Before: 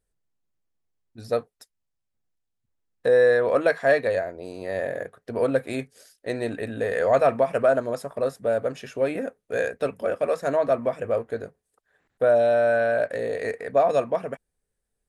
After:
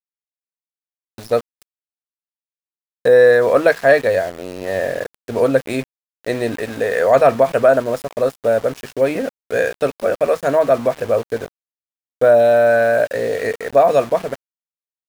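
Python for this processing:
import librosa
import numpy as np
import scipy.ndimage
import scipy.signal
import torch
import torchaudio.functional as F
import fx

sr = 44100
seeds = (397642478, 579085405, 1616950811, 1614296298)

y = fx.low_shelf(x, sr, hz=130.0, db=-10.5, at=(6.55, 7.16))
y = np.where(np.abs(y) >= 10.0 ** (-37.5 / 20.0), y, 0.0)
y = y * 10.0 ** (7.5 / 20.0)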